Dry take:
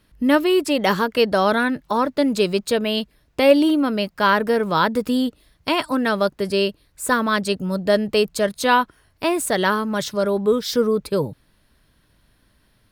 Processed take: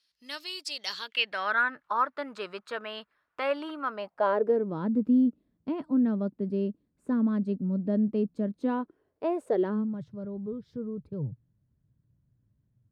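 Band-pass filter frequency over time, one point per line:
band-pass filter, Q 3
0.88 s 4.8 kHz
1.64 s 1.3 kHz
3.85 s 1.3 kHz
4.78 s 230 Hz
8.47 s 230 Hz
9.42 s 570 Hz
10.00 s 120 Hz

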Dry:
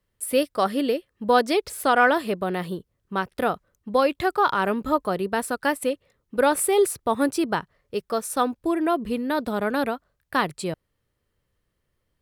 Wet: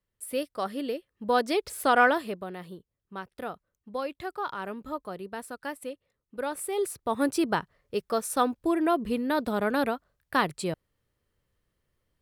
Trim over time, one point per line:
0.77 s -9 dB
2.01 s -2 dB
2.53 s -12.5 dB
6.57 s -12.5 dB
7.37 s -2 dB

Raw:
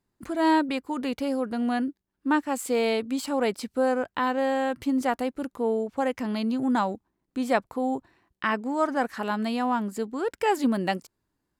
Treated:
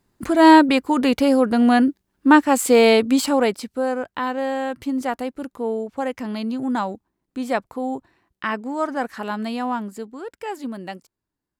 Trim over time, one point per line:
3.21 s +11 dB
3.70 s +1 dB
9.72 s +1 dB
10.33 s -6.5 dB

